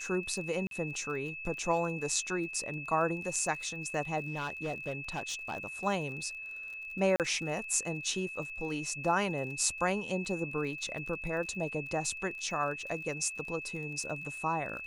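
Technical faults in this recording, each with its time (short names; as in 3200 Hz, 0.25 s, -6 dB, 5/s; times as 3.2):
crackle 35/s -42 dBFS
tone 2600 Hz -40 dBFS
0.67–0.71 gap 42 ms
4.28–5.64 clipped -30.5 dBFS
7.16–7.2 gap 38 ms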